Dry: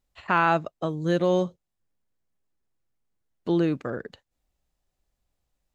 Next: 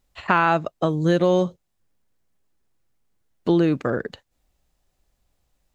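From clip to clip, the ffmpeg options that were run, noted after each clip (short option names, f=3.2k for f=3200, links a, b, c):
-af "acompressor=threshold=-24dB:ratio=2.5,volume=8dB"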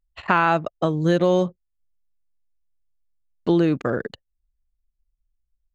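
-af "anlmdn=0.251"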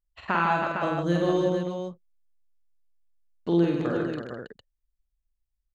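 -af "aecho=1:1:47|94|151|206|322|455:0.708|0.335|0.562|0.251|0.422|0.473,volume=-8dB"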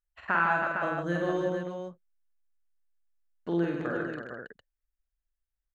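-af "equalizer=f=100:t=o:w=0.67:g=-3,equalizer=f=630:t=o:w=0.67:g=3,equalizer=f=1.6k:t=o:w=0.67:g=10,equalizer=f=4k:t=o:w=0.67:g=-5,volume=-6.5dB"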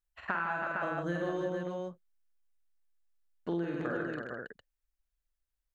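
-af "acompressor=threshold=-30dB:ratio=6"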